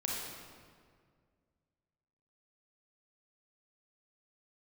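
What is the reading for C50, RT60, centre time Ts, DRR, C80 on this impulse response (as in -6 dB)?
-1.0 dB, 2.0 s, 0.102 s, -3.5 dB, 1.0 dB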